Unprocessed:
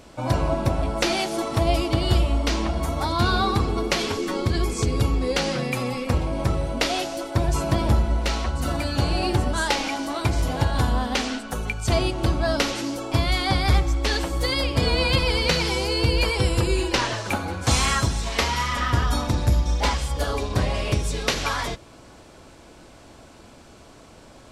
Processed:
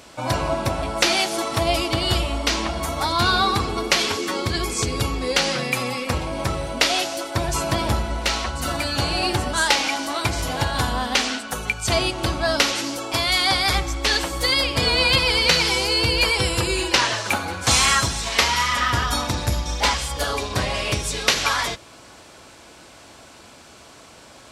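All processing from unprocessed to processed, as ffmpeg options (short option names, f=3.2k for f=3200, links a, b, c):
-filter_complex "[0:a]asettb=1/sr,asplit=3[a][b][c];[a]atrim=end=13.124[d];[b]atrim=start=13.12:end=13.75,asetpts=PTS-STARTPTS,afade=t=in:d=0.004:c=qsin,afade=t=out:st=0.626:d=0.004:c=qsin,bass=f=250:g=-7,treble=f=4k:g=3,aeval=exprs='val(0)+0.0158*(sin(2*PI*60*n/s)+sin(2*PI*2*60*n/s)/2+sin(2*PI*3*60*n/s)/3+sin(2*PI*4*60*n/s)/4+sin(2*PI*5*60*n/s)/5)':c=same[e];[c]atrim=start=13.746[f];[d][e]acrossfade=d=0.004:c1=hsin:c2=qsin[g];[g][f]acrossfade=d=0.004:c1=qsin:c2=hsin,highpass=53,tiltshelf=f=720:g=-5,volume=2dB"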